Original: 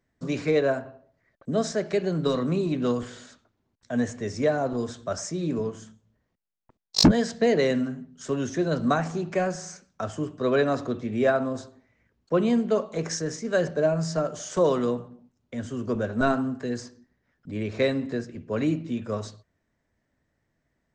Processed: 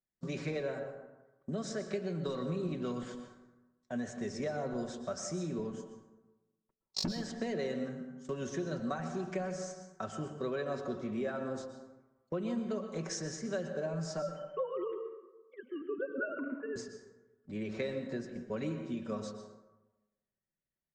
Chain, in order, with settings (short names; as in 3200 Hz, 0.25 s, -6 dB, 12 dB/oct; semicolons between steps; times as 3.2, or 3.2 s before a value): 14.22–16.76 sine-wave speech; gate -39 dBFS, range -16 dB; comb 5.3 ms, depth 48%; compressor 5:1, threshold -26 dBFS, peak gain reduction 14 dB; plate-style reverb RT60 1.1 s, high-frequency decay 0.45×, pre-delay 0.105 s, DRR 7.5 dB; gain -7.5 dB